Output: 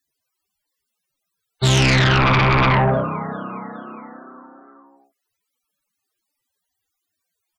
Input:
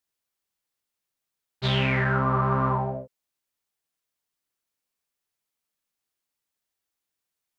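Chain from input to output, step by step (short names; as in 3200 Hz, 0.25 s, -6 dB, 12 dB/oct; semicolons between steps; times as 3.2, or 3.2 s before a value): frequency-shifting echo 0.41 s, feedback 54%, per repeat +30 Hz, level -17.5 dB; loudest bins only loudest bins 64; sine folder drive 11 dB, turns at -12 dBFS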